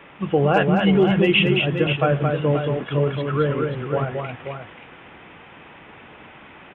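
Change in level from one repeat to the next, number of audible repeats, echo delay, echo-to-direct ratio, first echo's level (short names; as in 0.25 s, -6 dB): no steady repeat, 2, 0.222 s, -3.0 dB, -4.5 dB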